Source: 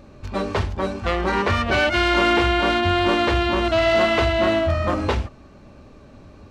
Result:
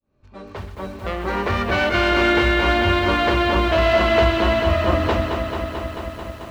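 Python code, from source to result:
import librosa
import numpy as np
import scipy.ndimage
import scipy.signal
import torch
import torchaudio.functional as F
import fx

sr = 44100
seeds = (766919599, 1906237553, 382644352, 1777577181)

p1 = fx.fade_in_head(x, sr, length_s=1.87)
p2 = fx.high_shelf(p1, sr, hz=4700.0, db=-6.5)
p3 = p2 + fx.echo_split(p2, sr, split_hz=1100.0, low_ms=235, high_ms=125, feedback_pct=52, wet_db=-11.0, dry=0)
y = fx.echo_crushed(p3, sr, ms=220, feedback_pct=80, bits=8, wet_db=-7.0)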